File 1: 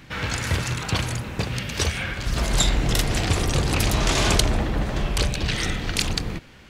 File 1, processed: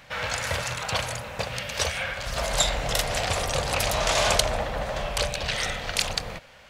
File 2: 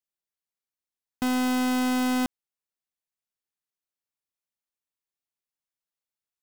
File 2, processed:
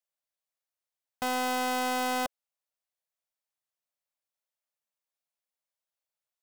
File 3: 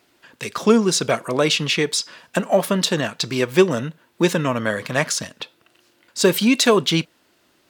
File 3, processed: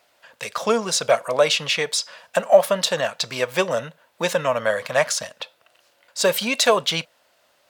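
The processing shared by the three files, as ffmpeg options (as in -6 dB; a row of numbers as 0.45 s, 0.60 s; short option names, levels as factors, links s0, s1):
-af "lowshelf=f=440:t=q:w=3:g=-8,volume=0.891"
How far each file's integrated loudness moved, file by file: -2.5 LU, -4.0 LU, -1.5 LU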